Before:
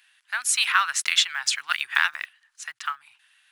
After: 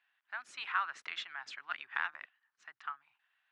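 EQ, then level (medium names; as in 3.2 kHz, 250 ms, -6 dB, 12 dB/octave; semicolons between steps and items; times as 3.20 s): band-pass filter 360 Hz, Q 0.79; distance through air 86 m; -2.0 dB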